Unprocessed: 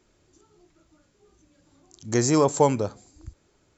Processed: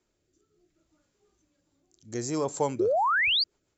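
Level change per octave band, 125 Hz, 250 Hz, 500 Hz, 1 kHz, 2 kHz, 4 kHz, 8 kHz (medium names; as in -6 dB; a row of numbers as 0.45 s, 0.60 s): -11.5 dB, -8.5 dB, -4.5 dB, 0.0 dB, +12.0 dB, +11.5 dB, no reading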